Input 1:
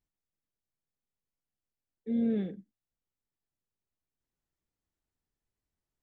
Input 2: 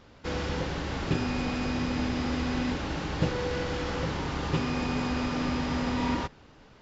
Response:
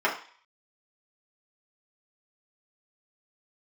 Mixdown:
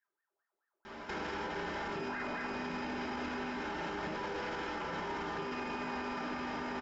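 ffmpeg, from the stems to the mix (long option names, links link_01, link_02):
-filter_complex "[0:a]asubboost=boost=4:cutoff=240,acompressor=threshold=-28dB:ratio=6,aeval=exprs='val(0)*sin(2*PI*1100*n/s+1100*0.7/4.6*sin(2*PI*4.6*n/s))':channel_layout=same,volume=-6.5dB,asplit=2[link_01][link_02];[link_02]volume=-7.5dB[link_03];[1:a]acompressor=threshold=-34dB:ratio=6,adelay=850,volume=0.5dB,asplit=2[link_04][link_05];[link_05]volume=-5dB[link_06];[2:a]atrim=start_sample=2205[link_07];[link_03][link_06]amix=inputs=2:normalize=0[link_08];[link_08][link_07]afir=irnorm=-1:irlink=0[link_09];[link_01][link_04][link_09]amix=inputs=3:normalize=0,alimiter=level_in=6.5dB:limit=-24dB:level=0:latency=1:release=60,volume=-6.5dB"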